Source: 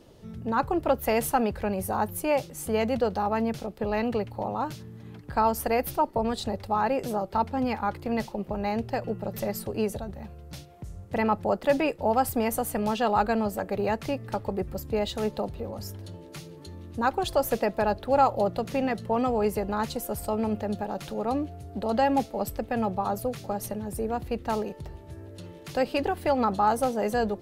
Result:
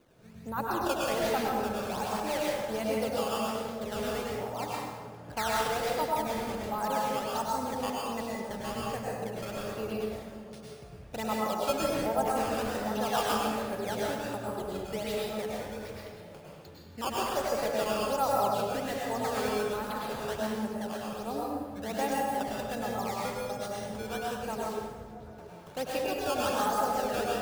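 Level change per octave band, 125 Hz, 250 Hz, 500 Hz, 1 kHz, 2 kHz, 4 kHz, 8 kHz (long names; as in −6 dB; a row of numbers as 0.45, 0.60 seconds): −6.5, −6.5, −4.5, −4.0, −1.5, +2.0, 0.0 decibels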